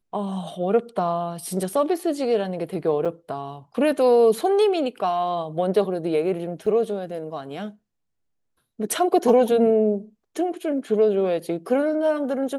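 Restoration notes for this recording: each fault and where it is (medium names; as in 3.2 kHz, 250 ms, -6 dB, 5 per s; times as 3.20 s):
3.05–3.06 s: dropout 6.3 ms
6.66 s: dropout 3.4 ms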